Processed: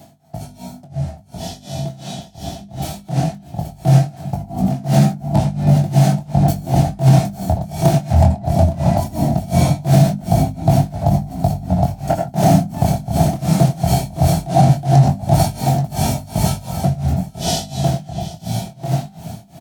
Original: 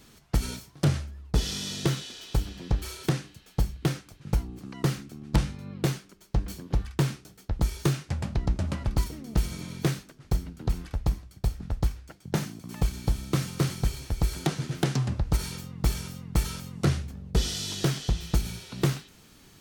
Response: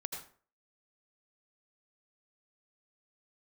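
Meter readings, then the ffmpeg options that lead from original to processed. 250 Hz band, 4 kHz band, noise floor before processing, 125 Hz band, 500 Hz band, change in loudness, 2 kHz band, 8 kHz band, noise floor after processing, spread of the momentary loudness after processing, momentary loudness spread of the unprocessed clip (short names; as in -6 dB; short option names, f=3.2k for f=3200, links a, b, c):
+14.0 dB, +5.5 dB, -56 dBFS, +14.0 dB, +15.5 dB, +13.5 dB, +4.5 dB, +8.5 dB, -42 dBFS, 15 LU, 7 LU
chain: -filter_complex "[0:a]asplit=2[a][b];[b]asoftclip=type=tanh:threshold=-20.5dB,volume=-4dB[c];[a][c]amix=inputs=2:normalize=0,firequalizer=gain_entry='entry(190,0);entry(470,-17);entry(670,12);entry(1100,-15)':delay=0.05:min_phase=1,areverse,acompressor=threshold=-36dB:ratio=5,areverse,highpass=f=89:w=0.5412,highpass=f=89:w=1.3066[d];[1:a]atrim=start_sample=2205[e];[d][e]afir=irnorm=-1:irlink=0,flanger=delay=19.5:depth=5.9:speed=0.19,aecho=1:1:830:0.376,tremolo=f=2.8:d=0.94,highshelf=f=7k:g=8,bandreject=f=50:t=h:w=6,bandreject=f=100:t=h:w=6,bandreject=f=150:t=h:w=6,bandreject=f=200:t=h:w=6,bandreject=f=250:t=h:w=6,dynaudnorm=f=700:g=13:m=15dB,alimiter=level_in=22dB:limit=-1dB:release=50:level=0:latency=1,volume=-1dB"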